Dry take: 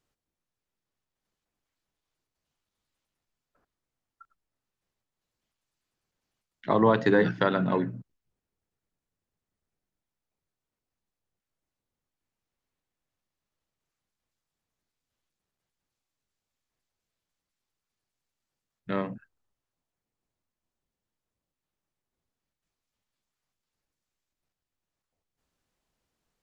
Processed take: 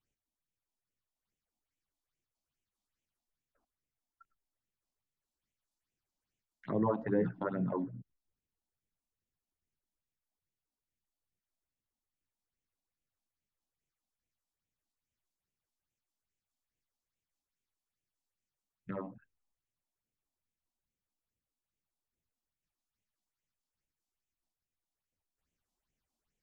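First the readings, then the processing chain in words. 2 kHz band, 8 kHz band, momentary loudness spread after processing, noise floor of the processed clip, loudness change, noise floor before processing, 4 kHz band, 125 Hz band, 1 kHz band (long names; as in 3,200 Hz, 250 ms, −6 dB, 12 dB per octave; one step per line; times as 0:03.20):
−18.0 dB, can't be measured, 19 LU, below −85 dBFS, −9.5 dB, below −85 dBFS, below −25 dB, −7.5 dB, −12.0 dB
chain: all-pass phaser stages 6, 2.4 Hz, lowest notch 110–1,300 Hz
treble cut that deepens with the level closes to 1,100 Hz, closed at −31.5 dBFS
level −6 dB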